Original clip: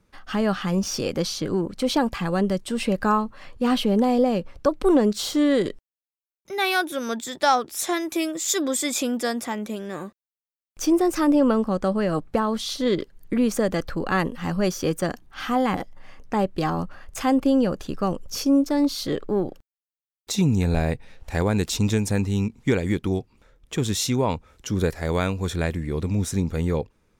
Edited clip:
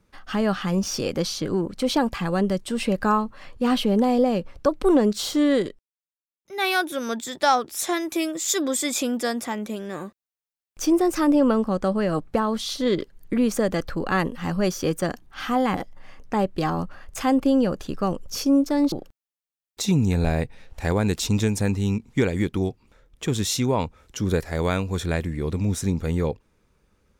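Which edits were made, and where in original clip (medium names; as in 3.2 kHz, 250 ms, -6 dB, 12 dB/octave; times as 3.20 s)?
5.57–6.65 s: dip -11 dB, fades 0.18 s
18.92–19.42 s: delete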